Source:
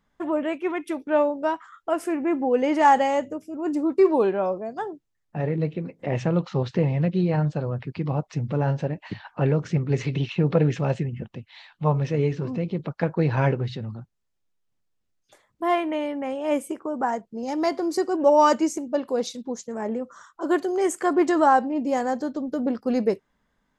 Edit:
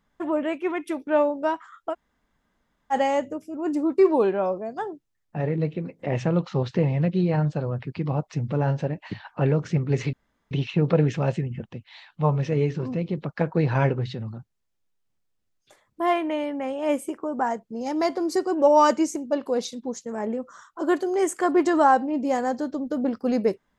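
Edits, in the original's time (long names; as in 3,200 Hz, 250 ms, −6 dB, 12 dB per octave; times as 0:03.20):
0:01.92–0:02.93: fill with room tone, crossfade 0.06 s
0:10.13: splice in room tone 0.38 s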